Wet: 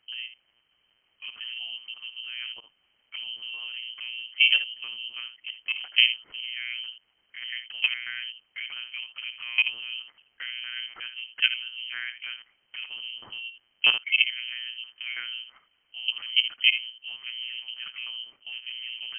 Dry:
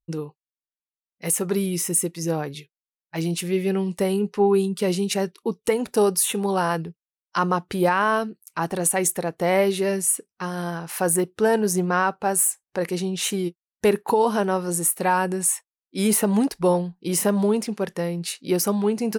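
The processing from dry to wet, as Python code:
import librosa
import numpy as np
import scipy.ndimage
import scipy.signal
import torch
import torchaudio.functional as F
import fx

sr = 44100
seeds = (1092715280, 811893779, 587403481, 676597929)

y = fx.highpass(x, sr, hz=57.0, slope=6)
y = fx.peak_eq(y, sr, hz=510.0, db=-2.5, octaves=1.4)
y = fx.level_steps(y, sr, step_db=19)
y = fx.filter_lfo_lowpass(y, sr, shape='saw_down', hz=3.1, low_hz=680.0, high_hz=1900.0, q=1.8)
y = fx.dmg_noise_colour(y, sr, seeds[0], colour='pink', level_db=-70.0)
y = y + 10.0 ** (-10.5 / 20.0) * np.pad(y, (int(71 * sr / 1000.0), 0))[:len(y)]
y = fx.lpc_monotone(y, sr, seeds[1], pitch_hz=120.0, order=8)
y = fx.freq_invert(y, sr, carrier_hz=3100)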